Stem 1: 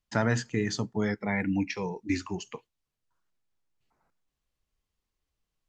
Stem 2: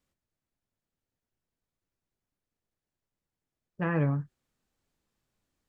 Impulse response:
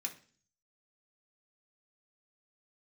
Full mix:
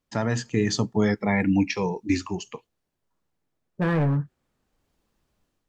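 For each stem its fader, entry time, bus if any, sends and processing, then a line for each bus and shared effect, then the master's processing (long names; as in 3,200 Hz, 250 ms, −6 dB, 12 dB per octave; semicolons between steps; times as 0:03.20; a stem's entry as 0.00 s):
0.0 dB, 0.00 s, no send, parametric band 2,000 Hz −5 dB 0.23 octaves; notch filter 1,500 Hz, Q 7.6; automatic ducking −12 dB, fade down 1.90 s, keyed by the second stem
+2.5 dB, 0.00 s, no send, low-shelf EQ 97 Hz −7 dB; hard clipping −28 dBFS, distortion −9 dB; high-shelf EQ 2,400 Hz −11 dB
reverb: not used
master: automatic gain control gain up to 7 dB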